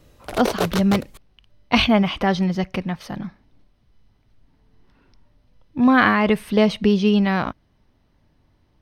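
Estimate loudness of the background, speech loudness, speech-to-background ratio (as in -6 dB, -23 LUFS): -27.5 LUFS, -19.5 LUFS, 8.0 dB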